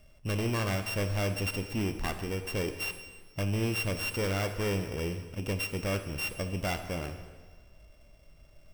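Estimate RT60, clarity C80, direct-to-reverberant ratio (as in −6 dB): 1.5 s, 10.5 dB, 7.0 dB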